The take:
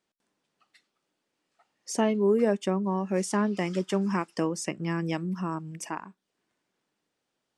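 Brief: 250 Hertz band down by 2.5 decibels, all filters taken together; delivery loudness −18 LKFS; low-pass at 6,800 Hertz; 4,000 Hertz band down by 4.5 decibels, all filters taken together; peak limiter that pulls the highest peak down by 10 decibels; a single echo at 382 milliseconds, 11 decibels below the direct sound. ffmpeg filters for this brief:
ffmpeg -i in.wav -af "lowpass=6800,equalizer=frequency=250:width_type=o:gain=-3.5,equalizer=frequency=4000:width_type=o:gain=-6.5,alimiter=limit=-23.5dB:level=0:latency=1,aecho=1:1:382:0.282,volume=16dB" out.wav

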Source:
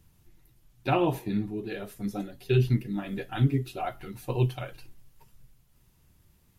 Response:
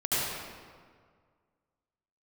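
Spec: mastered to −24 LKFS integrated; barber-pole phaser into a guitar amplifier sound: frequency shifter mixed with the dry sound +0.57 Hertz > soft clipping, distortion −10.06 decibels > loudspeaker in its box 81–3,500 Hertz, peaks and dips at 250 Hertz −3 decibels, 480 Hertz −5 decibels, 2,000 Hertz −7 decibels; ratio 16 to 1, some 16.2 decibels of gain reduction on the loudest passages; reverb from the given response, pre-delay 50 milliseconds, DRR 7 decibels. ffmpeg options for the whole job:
-filter_complex "[0:a]acompressor=threshold=-34dB:ratio=16,asplit=2[link_01][link_02];[1:a]atrim=start_sample=2205,adelay=50[link_03];[link_02][link_03]afir=irnorm=-1:irlink=0,volume=-18dB[link_04];[link_01][link_04]amix=inputs=2:normalize=0,asplit=2[link_05][link_06];[link_06]afreqshift=0.57[link_07];[link_05][link_07]amix=inputs=2:normalize=1,asoftclip=threshold=-40dB,highpass=81,equalizer=frequency=250:width_type=q:width=4:gain=-3,equalizer=frequency=480:width_type=q:width=4:gain=-5,equalizer=frequency=2000:width_type=q:width=4:gain=-7,lowpass=frequency=3500:width=0.5412,lowpass=frequency=3500:width=1.3066,volume=23.5dB"

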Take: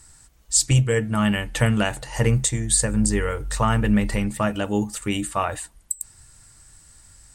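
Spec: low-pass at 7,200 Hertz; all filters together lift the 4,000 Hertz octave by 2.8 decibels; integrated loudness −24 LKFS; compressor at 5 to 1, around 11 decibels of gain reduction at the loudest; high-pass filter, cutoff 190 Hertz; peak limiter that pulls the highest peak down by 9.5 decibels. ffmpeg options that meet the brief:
ffmpeg -i in.wav -af "highpass=190,lowpass=7200,equalizer=frequency=4000:width_type=o:gain=4.5,acompressor=threshold=-30dB:ratio=5,volume=12dB,alimiter=limit=-12dB:level=0:latency=1" out.wav

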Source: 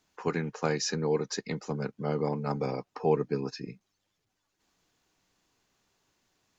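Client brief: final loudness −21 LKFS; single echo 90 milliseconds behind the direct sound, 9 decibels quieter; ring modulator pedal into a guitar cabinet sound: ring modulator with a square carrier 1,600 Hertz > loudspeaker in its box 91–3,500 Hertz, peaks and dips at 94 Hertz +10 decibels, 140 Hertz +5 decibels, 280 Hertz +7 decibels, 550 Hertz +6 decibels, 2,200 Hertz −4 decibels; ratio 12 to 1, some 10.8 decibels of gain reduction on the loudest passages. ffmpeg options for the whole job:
ffmpeg -i in.wav -af "acompressor=threshold=-30dB:ratio=12,aecho=1:1:90:0.355,aeval=exprs='val(0)*sgn(sin(2*PI*1600*n/s))':channel_layout=same,highpass=91,equalizer=frequency=94:width_type=q:width=4:gain=10,equalizer=frequency=140:width_type=q:width=4:gain=5,equalizer=frequency=280:width_type=q:width=4:gain=7,equalizer=frequency=550:width_type=q:width=4:gain=6,equalizer=frequency=2200:width_type=q:width=4:gain=-4,lowpass=frequency=3500:width=0.5412,lowpass=frequency=3500:width=1.3066,volume=15.5dB" out.wav

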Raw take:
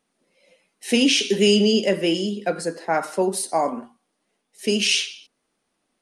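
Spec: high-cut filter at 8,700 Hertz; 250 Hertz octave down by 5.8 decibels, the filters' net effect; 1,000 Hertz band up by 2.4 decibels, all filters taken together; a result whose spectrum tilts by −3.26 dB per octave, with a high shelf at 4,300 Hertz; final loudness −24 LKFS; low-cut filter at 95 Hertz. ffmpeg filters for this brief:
ffmpeg -i in.wav -af "highpass=95,lowpass=8700,equalizer=frequency=250:width_type=o:gain=-7.5,equalizer=frequency=1000:width_type=o:gain=4.5,highshelf=frequency=4300:gain=-8,volume=-0.5dB" out.wav

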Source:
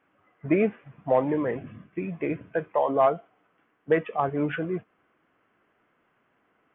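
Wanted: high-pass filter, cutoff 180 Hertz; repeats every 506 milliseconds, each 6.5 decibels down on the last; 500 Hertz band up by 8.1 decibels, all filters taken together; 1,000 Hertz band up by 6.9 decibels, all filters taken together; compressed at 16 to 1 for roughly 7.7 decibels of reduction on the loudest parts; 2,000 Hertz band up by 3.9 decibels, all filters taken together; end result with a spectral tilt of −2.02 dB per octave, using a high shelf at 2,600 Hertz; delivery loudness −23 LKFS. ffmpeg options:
ffmpeg -i in.wav -af "highpass=180,equalizer=frequency=500:width_type=o:gain=8.5,equalizer=frequency=1000:width_type=o:gain=5.5,equalizer=frequency=2000:width_type=o:gain=6,highshelf=frequency=2600:gain=-8.5,acompressor=threshold=-15dB:ratio=16,aecho=1:1:506|1012|1518|2024|2530|3036:0.473|0.222|0.105|0.0491|0.0231|0.0109,volume=1dB" out.wav

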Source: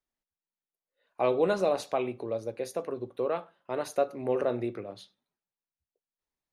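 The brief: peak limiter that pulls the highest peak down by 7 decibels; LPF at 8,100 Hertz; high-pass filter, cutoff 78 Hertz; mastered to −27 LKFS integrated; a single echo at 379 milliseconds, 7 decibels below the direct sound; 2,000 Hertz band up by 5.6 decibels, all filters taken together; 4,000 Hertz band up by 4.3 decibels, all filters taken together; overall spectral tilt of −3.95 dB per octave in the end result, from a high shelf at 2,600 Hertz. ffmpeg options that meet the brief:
ffmpeg -i in.wav -af "highpass=78,lowpass=8100,equalizer=frequency=2000:width_type=o:gain=8.5,highshelf=frequency=2600:gain=-3.5,equalizer=frequency=4000:width_type=o:gain=5.5,alimiter=limit=-20dB:level=0:latency=1,aecho=1:1:379:0.447,volume=5.5dB" out.wav

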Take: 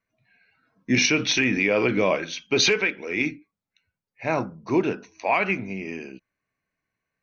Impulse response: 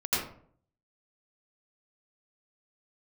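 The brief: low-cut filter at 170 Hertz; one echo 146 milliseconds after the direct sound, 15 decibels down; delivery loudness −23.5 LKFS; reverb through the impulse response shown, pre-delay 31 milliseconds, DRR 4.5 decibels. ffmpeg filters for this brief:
-filter_complex "[0:a]highpass=170,aecho=1:1:146:0.178,asplit=2[link_01][link_02];[1:a]atrim=start_sample=2205,adelay=31[link_03];[link_02][link_03]afir=irnorm=-1:irlink=0,volume=-14dB[link_04];[link_01][link_04]amix=inputs=2:normalize=0,volume=-1.5dB"

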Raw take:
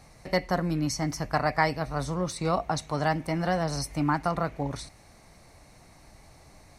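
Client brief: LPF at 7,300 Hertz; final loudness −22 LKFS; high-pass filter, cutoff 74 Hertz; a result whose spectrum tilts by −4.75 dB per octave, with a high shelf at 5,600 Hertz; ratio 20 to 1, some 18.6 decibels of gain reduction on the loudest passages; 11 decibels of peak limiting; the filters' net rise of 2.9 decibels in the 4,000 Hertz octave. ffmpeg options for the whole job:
ffmpeg -i in.wav -af "highpass=74,lowpass=7300,equalizer=frequency=4000:width_type=o:gain=6,highshelf=frequency=5600:gain=-4,acompressor=threshold=-38dB:ratio=20,volume=25dB,alimiter=limit=-10.5dB:level=0:latency=1" out.wav

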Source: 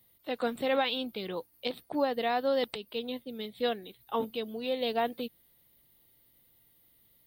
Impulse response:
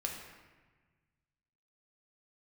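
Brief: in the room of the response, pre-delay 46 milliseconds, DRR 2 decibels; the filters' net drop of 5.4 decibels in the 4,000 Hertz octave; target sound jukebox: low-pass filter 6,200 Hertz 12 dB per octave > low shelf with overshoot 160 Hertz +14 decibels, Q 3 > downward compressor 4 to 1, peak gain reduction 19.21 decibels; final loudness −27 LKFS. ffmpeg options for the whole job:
-filter_complex "[0:a]equalizer=frequency=4000:width_type=o:gain=-6.5,asplit=2[link_01][link_02];[1:a]atrim=start_sample=2205,adelay=46[link_03];[link_02][link_03]afir=irnorm=-1:irlink=0,volume=-3.5dB[link_04];[link_01][link_04]amix=inputs=2:normalize=0,lowpass=6200,lowshelf=frequency=160:width_type=q:width=3:gain=14,acompressor=threshold=-46dB:ratio=4,volume=20dB"

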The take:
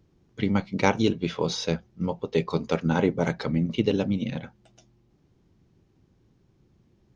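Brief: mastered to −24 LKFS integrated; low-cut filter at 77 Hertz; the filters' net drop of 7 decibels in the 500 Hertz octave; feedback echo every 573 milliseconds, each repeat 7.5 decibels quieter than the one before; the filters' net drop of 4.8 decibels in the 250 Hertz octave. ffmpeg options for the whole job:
ffmpeg -i in.wav -af "highpass=77,equalizer=frequency=250:width_type=o:gain=-5,equalizer=frequency=500:width_type=o:gain=-7,aecho=1:1:573|1146|1719|2292|2865:0.422|0.177|0.0744|0.0312|0.0131,volume=6dB" out.wav

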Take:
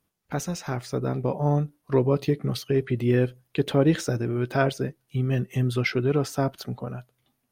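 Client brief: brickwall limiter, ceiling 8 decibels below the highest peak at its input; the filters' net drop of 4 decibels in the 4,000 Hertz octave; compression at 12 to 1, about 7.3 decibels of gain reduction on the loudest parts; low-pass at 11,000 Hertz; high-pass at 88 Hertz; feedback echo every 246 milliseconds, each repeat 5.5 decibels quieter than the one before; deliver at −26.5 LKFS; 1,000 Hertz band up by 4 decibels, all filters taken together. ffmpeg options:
ffmpeg -i in.wav -af "highpass=88,lowpass=11000,equalizer=frequency=1000:width_type=o:gain=6,equalizer=frequency=4000:width_type=o:gain=-5.5,acompressor=threshold=-21dB:ratio=12,alimiter=limit=-19dB:level=0:latency=1,aecho=1:1:246|492|738|984|1230|1476|1722:0.531|0.281|0.149|0.079|0.0419|0.0222|0.0118,volume=4dB" out.wav

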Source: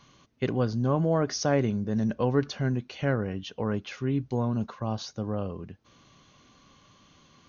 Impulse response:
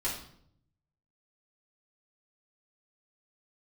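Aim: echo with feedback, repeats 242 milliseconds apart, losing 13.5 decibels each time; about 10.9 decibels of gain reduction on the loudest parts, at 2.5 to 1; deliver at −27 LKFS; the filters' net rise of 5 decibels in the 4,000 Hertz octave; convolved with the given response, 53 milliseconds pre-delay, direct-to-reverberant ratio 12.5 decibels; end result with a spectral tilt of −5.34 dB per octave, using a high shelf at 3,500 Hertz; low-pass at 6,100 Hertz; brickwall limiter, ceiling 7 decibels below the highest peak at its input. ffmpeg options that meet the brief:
-filter_complex "[0:a]lowpass=6100,highshelf=frequency=3500:gain=4.5,equalizer=frequency=4000:width_type=o:gain=4.5,acompressor=threshold=-36dB:ratio=2.5,alimiter=level_in=3.5dB:limit=-24dB:level=0:latency=1,volume=-3.5dB,aecho=1:1:242|484:0.211|0.0444,asplit=2[link_01][link_02];[1:a]atrim=start_sample=2205,adelay=53[link_03];[link_02][link_03]afir=irnorm=-1:irlink=0,volume=-17.5dB[link_04];[link_01][link_04]amix=inputs=2:normalize=0,volume=11dB"

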